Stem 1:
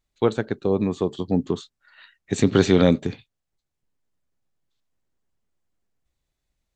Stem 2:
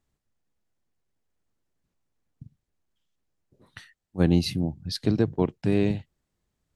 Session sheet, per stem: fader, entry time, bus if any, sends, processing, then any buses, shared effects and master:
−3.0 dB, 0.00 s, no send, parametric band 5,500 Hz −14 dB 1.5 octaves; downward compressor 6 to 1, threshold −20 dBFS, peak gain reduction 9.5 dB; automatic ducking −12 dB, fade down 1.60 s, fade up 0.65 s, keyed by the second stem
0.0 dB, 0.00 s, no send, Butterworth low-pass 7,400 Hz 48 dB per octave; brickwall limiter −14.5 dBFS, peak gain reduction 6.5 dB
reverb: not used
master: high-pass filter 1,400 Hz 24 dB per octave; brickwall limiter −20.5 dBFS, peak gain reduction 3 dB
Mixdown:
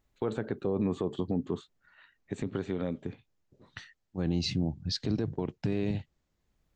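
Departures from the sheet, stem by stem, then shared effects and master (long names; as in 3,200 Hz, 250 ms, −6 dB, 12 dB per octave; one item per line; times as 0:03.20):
stem 1 −3.0 dB → +3.5 dB
master: missing high-pass filter 1,400 Hz 24 dB per octave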